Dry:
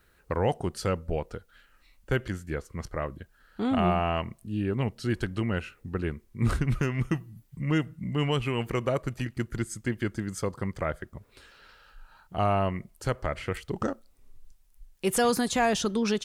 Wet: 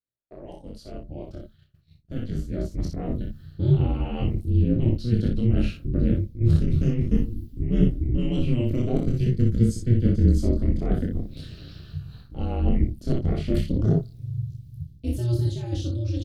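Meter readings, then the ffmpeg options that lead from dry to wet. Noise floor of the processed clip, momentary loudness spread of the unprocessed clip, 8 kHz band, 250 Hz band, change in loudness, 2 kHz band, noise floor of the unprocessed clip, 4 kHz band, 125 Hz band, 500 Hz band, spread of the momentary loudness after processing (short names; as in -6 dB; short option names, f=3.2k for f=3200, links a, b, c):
-54 dBFS, 11 LU, n/a, +5.5 dB, +5.0 dB, -12.5 dB, -63 dBFS, -6.0 dB, +9.0 dB, -2.0 dB, 17 LU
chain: -af "areverse,acompressor=threshold=-34dB:ratio=16,areverse,equalizer=f=125:t=o:w=1:g=-10,equalizer=f=250:t=o:w=1:g=4,equalizer=f=500:t=o:w=1:g=8,equalizer=f=1k:t=o:w=1:g=-12,equalizer=f=2k:t=o:w=1:g=-8,equalizer=f=4k:t=o:w=1:g=8,equalizer=f=8k:t=o:w=1:g=-7,aecho=1:1:30|62:0.668|0.596,flanger=delay=17.5:depth=5.9:speed=0.41,aeval=exprs='val(0)+0.000251*(sin(2*PI*60*n/s)+sin(2*PI*2*60*n/s)/2+sin(2*PI*3*60*n/s)/3+sin(2*PI*4*60*n/s)/4+sin(2*PI*5*60*n/s)/5)':c=same,dynaudnorm=f=560:g=9:m=10dB,bandreject=f=50:t=h:w=6,bandreject=f=100:t=h:w=6,aeval=exprs='val(0)*sin(2*PI*120*n/s)':c=same,asubboost=boost=10.5:cutoff=190,agate=range=-33dB:threshold=-43dB:ratio=3:detection=peak"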